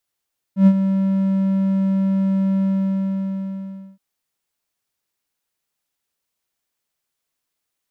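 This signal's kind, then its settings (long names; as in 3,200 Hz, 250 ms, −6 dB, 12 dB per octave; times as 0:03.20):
note with an ADSR envelope triangle 193 Hz, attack 106 ms, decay 62 ms, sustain −9.5 dB, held 2.07 s, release 1,350 ms −4 dBFS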